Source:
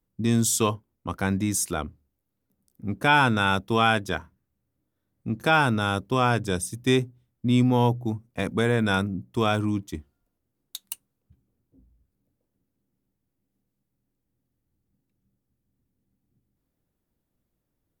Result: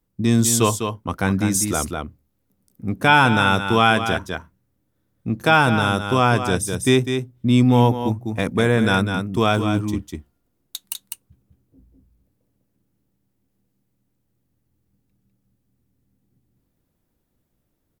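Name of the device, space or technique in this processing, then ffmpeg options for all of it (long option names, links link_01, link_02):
ducked delay: -filter_complex "[0:a]asplit=3[link_01][link_02][link_03];[link_02]adelay=201,volume=-3dB[link_04];[link_03]apad=whole_len=802682[link_05];[link_04][link_05]sidechaincompress=threshold=-24dB:ratio=4:attack=16:release=552[link_06];[link_01][link_06]amix=inputs=2:normalize=0,volume=5dB"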